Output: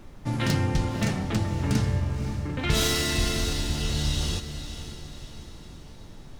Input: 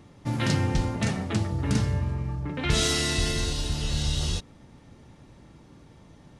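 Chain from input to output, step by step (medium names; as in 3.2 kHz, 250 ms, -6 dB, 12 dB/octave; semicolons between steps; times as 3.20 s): tracing distortion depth 0.039 ms; echo that smears into a reverb 531 ms, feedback 48%, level -10.5 dB; added noise brown -44 dBFS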